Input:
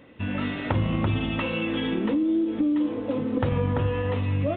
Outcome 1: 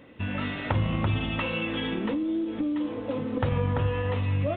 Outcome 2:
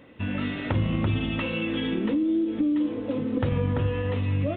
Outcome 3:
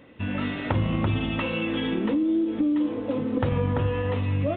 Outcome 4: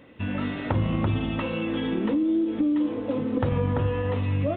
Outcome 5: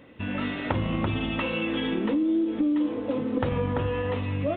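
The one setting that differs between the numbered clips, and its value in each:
dynamic equaliser, frequency: 300, 890, 9,200, 2,700, 110 Hertz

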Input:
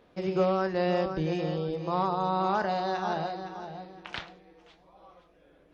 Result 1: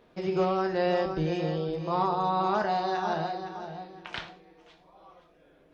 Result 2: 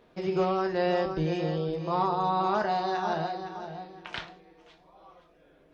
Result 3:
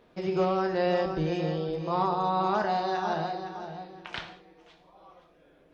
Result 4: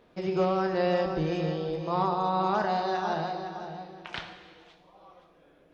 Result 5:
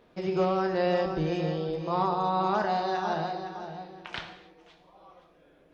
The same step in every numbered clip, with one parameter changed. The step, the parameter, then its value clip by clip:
reverb whose tail is shaped and stops, gate: 140, 90, 220, 520, 320 milliseconds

